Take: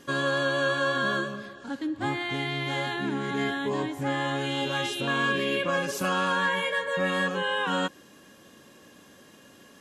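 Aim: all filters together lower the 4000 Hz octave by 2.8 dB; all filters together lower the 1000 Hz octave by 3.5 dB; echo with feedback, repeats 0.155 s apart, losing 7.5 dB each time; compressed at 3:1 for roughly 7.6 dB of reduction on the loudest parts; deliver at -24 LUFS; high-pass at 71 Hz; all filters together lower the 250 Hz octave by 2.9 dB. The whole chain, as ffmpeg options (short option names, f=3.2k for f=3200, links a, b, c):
-af "highpass=71,equalizer=f=250:t=o:g=-3.5,equalizer=f=1k:t=o:g=-4,equalizer=f=4k:t=o:g=-3.5,acompressor=threshold=-35dB:ratio=3,aecho=1:1:155|310|465|620|775:0.422|0.177|0.0744|0.0312|0.0131,volume=11dB"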